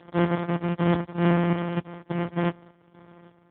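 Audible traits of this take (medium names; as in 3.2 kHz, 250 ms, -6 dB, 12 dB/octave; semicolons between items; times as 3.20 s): a buzz of ramps at a fixed pitch in blocks of 256 samples; chopped level 1.7 Hz, depth 60%, duty 60%; aliases and images of a low sample rate 2.6 kHz, jitter 0%; AMR-NB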